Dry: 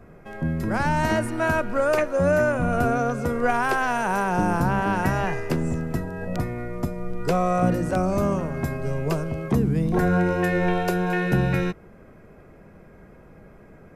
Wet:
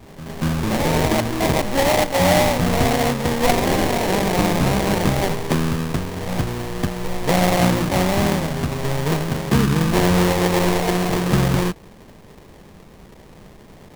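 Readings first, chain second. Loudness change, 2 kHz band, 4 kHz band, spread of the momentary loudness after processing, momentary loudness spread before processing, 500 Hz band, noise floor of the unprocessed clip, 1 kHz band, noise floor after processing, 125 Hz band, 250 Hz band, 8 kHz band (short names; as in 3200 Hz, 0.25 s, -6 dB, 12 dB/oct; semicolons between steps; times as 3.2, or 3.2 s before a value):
+4.5 dB, +2.0 dB, +15.5 dB, 9 LU, 8 LU, +3.5 dB, -49 dBFS, +3.0 dB, -45 dBFS, +4.5 dB, +4.5 dB, +13.5 dB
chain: pre-echo 0.234 s -14.5 dB; sample-rate reducer 1400 Hz, jitter 20%; gain +4 dB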